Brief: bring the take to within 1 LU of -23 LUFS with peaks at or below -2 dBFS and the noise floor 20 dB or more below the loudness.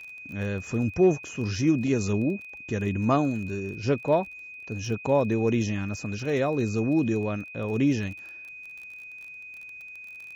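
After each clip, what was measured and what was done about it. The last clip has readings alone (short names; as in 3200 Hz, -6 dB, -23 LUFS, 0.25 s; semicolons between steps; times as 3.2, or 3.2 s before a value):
ticks 24/s; steady tone 2500 Hz; tone level -40 dBFS; loudness -26.5 LUFS; peak -12.0 dBFS; loudness target -23.0 LUFS
-> de-click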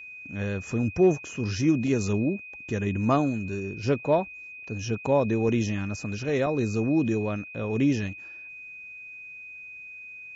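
ticks 0/s; steady tone 2500 Hz; tone level -40 dBFS
-> notch 2500 Hz, Q 30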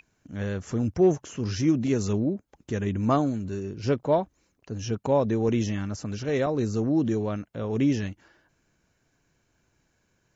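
steady tone none; loudness -27.0 LUFS; peak -12.0 dBFS; loudness target -23.0 LUFS
-> gain +4 dB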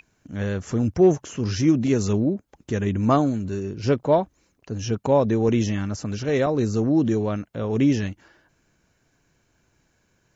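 loudness -23.0 LUFS; peak -8.0 dBFS; noise floor -67 dBFS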